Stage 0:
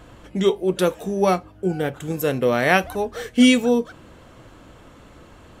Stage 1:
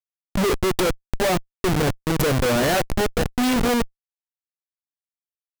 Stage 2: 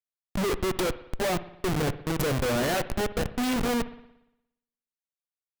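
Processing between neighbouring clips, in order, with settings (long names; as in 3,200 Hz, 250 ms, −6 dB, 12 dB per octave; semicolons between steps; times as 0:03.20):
noise reduction from a noise print of the clip's start 12 dB; comparator with hysteresis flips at −26 dBFS; level +3.5 dB
convolution reverb, pre-delay 58 ms, DRR 14 dB; level −6.5 dB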